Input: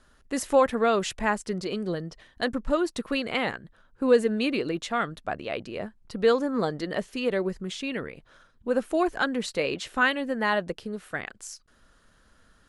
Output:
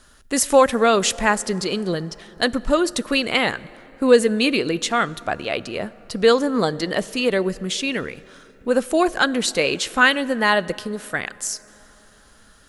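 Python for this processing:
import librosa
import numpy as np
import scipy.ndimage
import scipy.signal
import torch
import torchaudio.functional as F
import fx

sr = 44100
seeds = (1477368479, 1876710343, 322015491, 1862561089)

y = fx.high_shelf(x, sr, hz=3500.0, db=10.0)
y = fx.rev_plate(y, sr, seeds[0], rt60_s=4.0, hf_ratio=0.45, predelay_ms=0, drr_db=19.5)
y = F.gain(torch.from_numpy(y), 6.0).numpy()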